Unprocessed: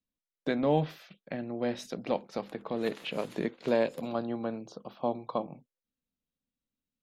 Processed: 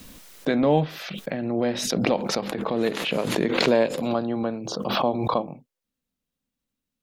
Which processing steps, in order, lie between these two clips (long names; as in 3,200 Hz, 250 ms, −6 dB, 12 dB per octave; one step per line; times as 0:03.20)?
background raised ahead of every attack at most 31 dB per second
level +6 dB